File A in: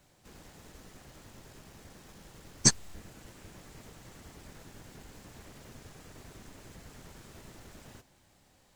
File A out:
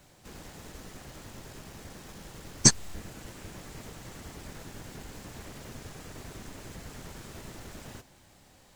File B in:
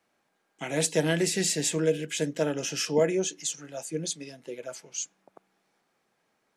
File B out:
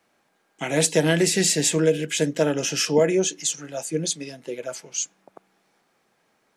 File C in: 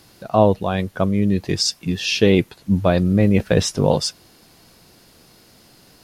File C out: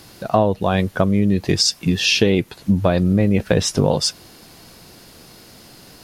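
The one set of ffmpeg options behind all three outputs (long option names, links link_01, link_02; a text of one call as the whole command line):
ffmpeg -i in.wav -af "acompressor=threshold=-19dB:ratio=6,volume=6.5dB" out.wav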